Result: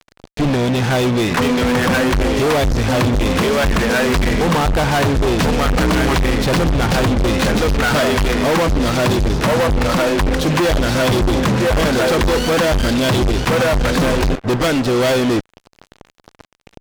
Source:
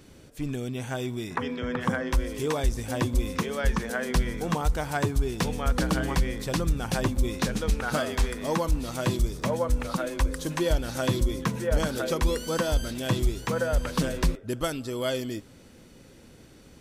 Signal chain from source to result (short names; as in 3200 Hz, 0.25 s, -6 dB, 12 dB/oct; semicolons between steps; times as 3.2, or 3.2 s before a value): Bessel low-pass 3800 Hz, order 4; harmoniser +7 st -16 dB; fuzz box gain 39 dB, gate -44 dBFS